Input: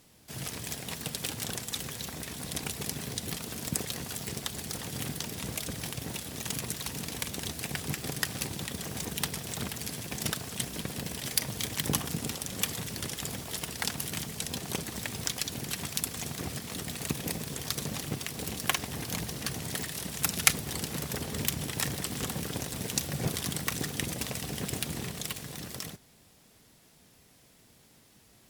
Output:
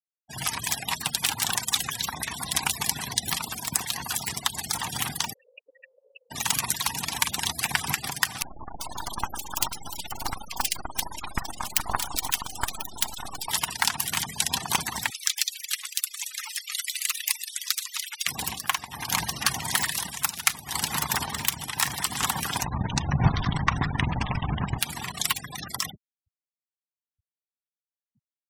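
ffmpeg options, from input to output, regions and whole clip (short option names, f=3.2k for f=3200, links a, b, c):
-filter_complex "[0:a]asettb=1/sr,asplit=3[a][b][c];[a]atrim=end=5.334[d];[b]atrim=start=5.33:end=6.31,asetpts=PTS-STARTPTS,afade=t=in:d=0.004:c=qsin,afade=t=out:st=0.976:d=0.004:c=qsin,acrossover=split=170|3000[e][f][g];[f]acompressor=threshold=-37dB:ratio=8:attack=3.2:release=140:knee=2.83:detection=peak[h];[e][h][g]amix=inputs=3:normalize=0,asplit=3[i][j][k];[i]bandpass=f=530:t=q:w=8,volume=0dB[l];[j]bandpass=f=1.84k:t=q:w=8,volume=-6dB[m];[k]bandpass=f=2.48k:t=q:w=8,volume=-9dB[n];[l][m][n]amix=inputs=3:normalize=0[o];[c]atrim=start=6.306[p];[d][o]acrossfade=d=0.004:c1=hsin:c2=qsin[q];[q][p]acrossfade=d=0.004:c1=qsin:c2=hsin,asettb=1/sr,asplit=3[r][s][t];[r]atrim=end=8.424[u];[s]atrim=start=8.42:end=13.48,asetpts=PTS-STARTPTS,afade=t=in:d=0.004:c=qsin,afade=t=out:st=5.056:d=0.004:c=qsin,aeval=exprs='abs(val(0))':c=same,acrossover=split=1900[v][w];[w]adelay=390[x];[v][x]amix=inputs=2:normalize=0,atrim=end_sample=223146[y];[t]atrim=start=13.476[z];[u][y]acrossfade=d=0.004:c1=hsin:c2=qsin[aa];[aa][z]acrossfade=d=0.004:c1=qsin:c2=hsin,asettb=1/sr,asplit=3[ab][ac][ad];[ab]atrim=end=15.104[ae];[ac]atrim=start=15.1:end=18.27,asetpts=PTS-STARTPTS,afade=t=in:d=0.004:c=qsin,afade=t=out:st=3.166:d=0.004:c=qsin,highpass=1.5k,afreqshift=120[af];[ad]atrim=start=18.266[ag];[ae][af]acrossfade=d=0.004:c1=hsin:c2=qsin[ah];[ah][ag]acrossfade=d=0.004:c1=qsin:c2=hsin,asettb=1/sr,asplit=3[ai][aj][ak];[ai]atrim=end=22.644[al];[aj]atrim=start=22.64:end=24.79,asetpts=PTS-STARTPTS,afade=t=in:d=0.004:c=qsin,afade=t=out:st=2.146:d=0.004:c=qsin,aemphasis=mode=reproduction:type=riaa,asplit=6[am][an][ao][ap][aq][ar];[an]adelay=136,afreqshift=-62,volume=-12dB[as];[ao]adelay=272,afreqshift=-124,volume=-18.7dB[at];[ap]adelay=408,afreqshift=-186,volume=-25.5dB[au];[aq]adelay=544,afreqshift=-248,volume=-32.2dB[av];[ar]adelay=680,afreqshift=-310,volume=-39dB[aw];[am][as][at][au][av][aw]amix=inputs=6:normalize=0,atrim=end_sample=94815,aeval=exprs='sgn(val(0))*max(abs(val(0))-0.00891,0)':c=same[ax];[ak]atrim=start=24.786[ay];[al][ax]acrossfade=d=0.004:c1=hsin:c2=qsin[az];[az][ay]acrossfade=d=0.004:c1=qsin:c2=hsin,afftfilt=real='re*gte(hypot(re,im),0.01)':imag='im*gte(hypot(re,im),0.01)':win_size=1024:overlap=0.75,lowshelf=f=680:t=q:w=3:g=-10,dynaudnorm=f=100:g=5:m=12.5dB,volume=-1dB"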